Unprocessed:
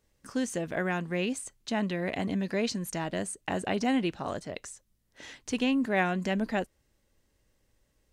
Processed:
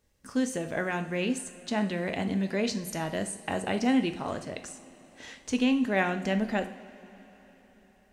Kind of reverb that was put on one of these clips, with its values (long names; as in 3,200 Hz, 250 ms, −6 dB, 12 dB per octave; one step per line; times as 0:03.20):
coupled-rooms reverb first 0.51 s, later 4.7 s, from −18 dB, DRR 7.5 dB